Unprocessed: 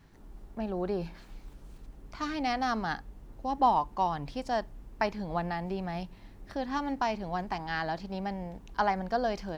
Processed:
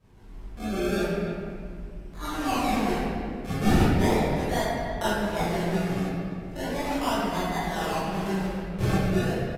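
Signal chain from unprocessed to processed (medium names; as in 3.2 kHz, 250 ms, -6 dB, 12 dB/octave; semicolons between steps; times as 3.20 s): fade out at the end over 0.63 s; decimation with a swept rate 31×, swing 100% 0.37 Hz; reverberation RT60 2.1 s, pre-delay 21 ms, DRR -12.5 dB; resampled via 32 kHz; speakerphone echo 300 ms, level -11 dB; trim -8 dB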